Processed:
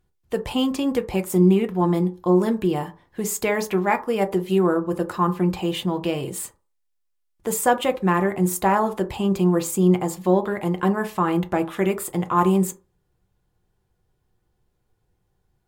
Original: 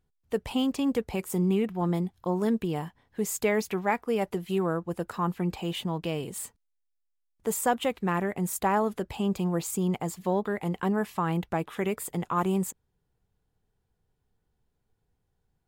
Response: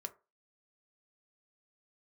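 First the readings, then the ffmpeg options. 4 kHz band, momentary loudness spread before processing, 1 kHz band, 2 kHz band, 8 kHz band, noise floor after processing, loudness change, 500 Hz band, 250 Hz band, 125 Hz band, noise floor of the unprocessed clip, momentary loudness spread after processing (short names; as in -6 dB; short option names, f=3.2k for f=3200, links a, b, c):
+5.5 dB, 7 LU, +7.0 dB, +6.0 dB, +5.5 dB, -71 dBFS, +7.0 dB, +7.5 dB, +7.5 dB, +7.0 dB, -77 dBFS, 8 LU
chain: -filter_complex "[1:a]atrim=start_sample=2205,asetrate=39249,aresample=44100[a];[0:a][a]afir=irnorm=-1:irlink=0,volume=8.5dB"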